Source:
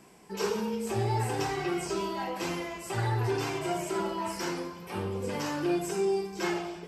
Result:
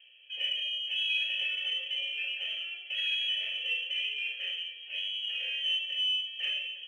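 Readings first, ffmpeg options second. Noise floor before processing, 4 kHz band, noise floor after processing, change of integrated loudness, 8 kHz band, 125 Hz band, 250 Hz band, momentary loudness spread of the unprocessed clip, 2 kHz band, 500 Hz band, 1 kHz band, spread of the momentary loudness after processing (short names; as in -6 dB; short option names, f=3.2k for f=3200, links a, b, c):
-45 dBFS, +15.0 dB, -47 dBFS, +1.0 dB, under -20 dB, under -40 dB, under -40 dB, 6 LU, +5.5 dB, -28.0 dB, under -30 dB, 6 LU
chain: -filter_complex "[0:a]bandreject=f=960:w=25,lowpass=f=2.9k:t=q:w=0.5098,lowpass=f=2.9k:t=q:w=0.6013,lowpass=f=2.9k:t=q:w=0.9,lowpass=f=2.9k:t=q:w=2.563,afreqshift=-3400,aexciter=amount=2.7:drive=9.9:freq=2.5k,asplit=3[a][b][c];[a]bandpass=f=530:t=q:w=8,volume=0dB[d];[b]bandpass=f=1.84k:t=q:w=8,volume=-6dB[e];[c]bandpass=f=2.48k:t=q:w=8,volume=-9dB[f];[d][e][f]amix=inputs=3:normalize=0"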